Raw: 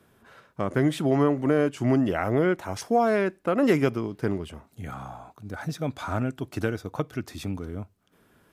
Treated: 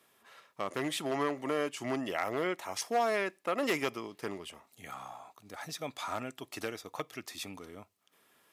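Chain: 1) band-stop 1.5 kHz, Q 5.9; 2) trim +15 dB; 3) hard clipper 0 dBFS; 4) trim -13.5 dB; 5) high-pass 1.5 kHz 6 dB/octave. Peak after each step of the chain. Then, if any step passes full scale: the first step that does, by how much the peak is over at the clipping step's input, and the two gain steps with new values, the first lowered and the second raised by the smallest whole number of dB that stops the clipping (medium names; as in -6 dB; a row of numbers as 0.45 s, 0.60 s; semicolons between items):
-9.5 dBFS, +5.5 dBFS, 0.0 dBFS, -13.5 dBFS, -16.5 dBFS; step 2, 5.5 dB; step 2 +9 dB, step 4 -7.5 dB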